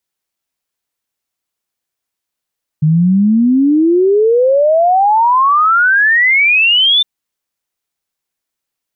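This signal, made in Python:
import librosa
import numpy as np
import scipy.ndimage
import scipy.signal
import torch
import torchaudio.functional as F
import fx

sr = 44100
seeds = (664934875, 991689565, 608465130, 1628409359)

y = fx.ess(sr, length_s=4.21, from_hz=150.0, to_hz=3600.0, level_db=-7.0)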